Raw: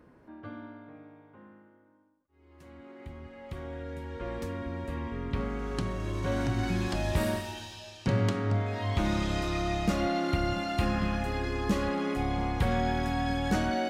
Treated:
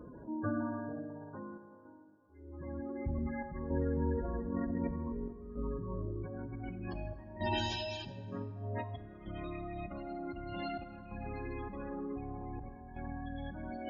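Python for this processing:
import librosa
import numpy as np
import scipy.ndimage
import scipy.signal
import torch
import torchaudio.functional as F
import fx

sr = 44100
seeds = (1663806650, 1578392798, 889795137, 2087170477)

y = fx.spec_gate(x, sr, threshold_db=-15, keep='strong')
y = fx.comb(y, sr, ms=4.7, depth=0.95, at=(3.18, 5.57))
y = fx.over_compress(y, sr, threshold_db=-40.0, ratio=-1.0)
y = fx.chopper(y, sr, hz=0.54, depth_pct=60, duty_pct=85)
y = fx.rev_plate(y, sr, seeds[0], rt60_s=2.6, hf_ratio=0.45, predelay_ms=0, drr_db=10.0)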